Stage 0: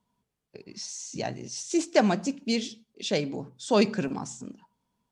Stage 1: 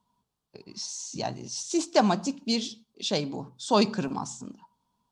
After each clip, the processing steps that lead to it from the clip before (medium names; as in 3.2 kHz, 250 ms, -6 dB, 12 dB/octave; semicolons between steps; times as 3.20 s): graphic EQ 500/1000/2000/4000 Hz -4/+8/-8/+5 dB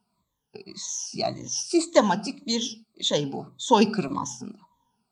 drifting ripple filter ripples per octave 1.1, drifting -1.8 Hz, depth 17 dB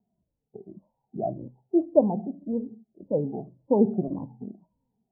steep low-pass 730 Hz 48 dB/octave